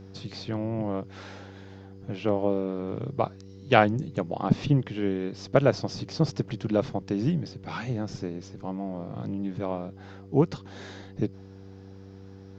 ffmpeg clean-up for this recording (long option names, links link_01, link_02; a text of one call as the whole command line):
ffmpeg -i in.wav -af "bandreject=frequency=96.7:width_type=h:width=4,bandreject=frequency=193.4:width_type=h:width=4,bandreject=frequency=290.1:width_type=h:width=4,bandreject=frequency=386.8:width_type=h:width=4,bandreject=frequency=483.5:width_type=h:width=4" out.wav